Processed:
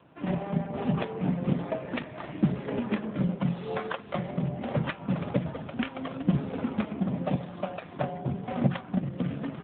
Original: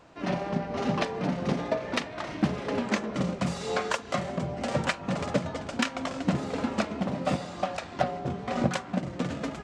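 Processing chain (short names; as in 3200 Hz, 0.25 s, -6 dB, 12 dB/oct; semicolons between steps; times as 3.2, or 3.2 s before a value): bell 140 Hz +7 dB 1.1 oct; thin delay 0.527 s, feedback 38%, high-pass 1600 Hz, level -18 dB; gain -2 dB; AMR-NB 7.4 kbps 8000 Hz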